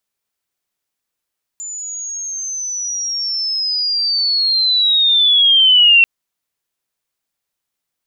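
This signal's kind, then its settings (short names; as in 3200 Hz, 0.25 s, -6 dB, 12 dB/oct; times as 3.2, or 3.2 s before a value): chirp linear 7100 Hz -> 2700 Hz -25 dBFS -> -5.5 dBFS 4.44 s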